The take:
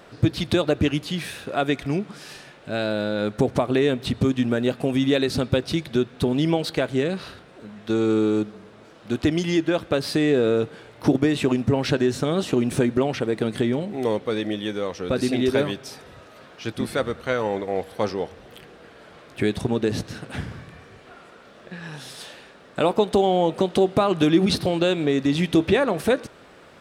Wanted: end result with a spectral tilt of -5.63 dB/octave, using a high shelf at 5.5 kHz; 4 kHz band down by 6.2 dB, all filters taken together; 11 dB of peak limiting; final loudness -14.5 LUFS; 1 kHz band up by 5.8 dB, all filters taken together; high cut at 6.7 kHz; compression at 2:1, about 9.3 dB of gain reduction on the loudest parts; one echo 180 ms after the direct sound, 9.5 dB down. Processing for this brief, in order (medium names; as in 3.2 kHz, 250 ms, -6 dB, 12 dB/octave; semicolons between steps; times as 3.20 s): low-pass 6.7 kHz; peaking EQ 1 kHz +8.5 dB; peaking EQ 4 kHz -6.5 dB; treble shelf 5.5 kHz -3.5 dB; compression 2:1, threshold -30 dBFS; peak limiter -22 dBFS; delay 180 ms -9.5 dB; trim +18.5 dB